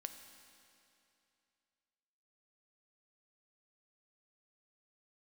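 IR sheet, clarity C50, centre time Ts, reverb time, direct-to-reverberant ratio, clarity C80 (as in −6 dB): 8.0 dB, 36 ms, 2.7 s, 6.5 dB, 8.5 dB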